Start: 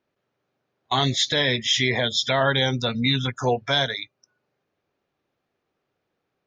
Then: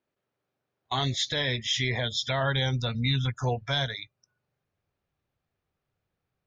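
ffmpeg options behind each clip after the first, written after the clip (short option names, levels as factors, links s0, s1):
-af "asubboost=boost=6.5:cutoff=120,volume=0.473"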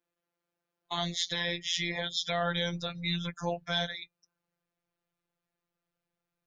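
-af "afftfilt=real='hypot(re,im)*cos(PI*b)':imag='0':win_size=1024:overlap=0.75,bass=f=250:g=-4,treble=f=4000:g=1"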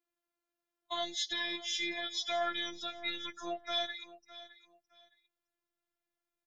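-af "afftfilt=real='hypot(re,im)*cos(PI*b)':imag='0':win_size=512:overlap=0.75,aecho=1:1:613|1226:0.15|0.0359"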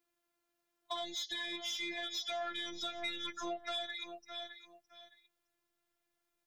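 -af "acompressor=threshold=0.01:ratio=8,asoftclip=type=tanh:threshold=0.02,volume=2"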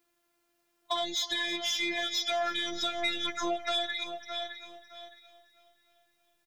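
-af "aecho=1:1:316|632|948|1264|1580|1896:0.15|0.0883|0.0521|0.0307|0.0181|0.0107,volume=2.66"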